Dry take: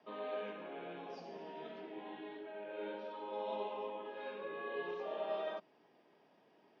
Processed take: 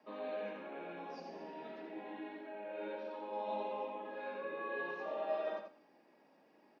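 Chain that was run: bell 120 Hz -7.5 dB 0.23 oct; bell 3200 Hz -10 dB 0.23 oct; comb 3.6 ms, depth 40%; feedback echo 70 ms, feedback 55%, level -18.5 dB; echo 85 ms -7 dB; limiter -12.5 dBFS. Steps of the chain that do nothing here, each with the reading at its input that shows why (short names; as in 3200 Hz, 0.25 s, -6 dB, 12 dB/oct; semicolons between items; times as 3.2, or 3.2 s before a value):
limiter -12.5 dBFS: input peak -26.0 dBFS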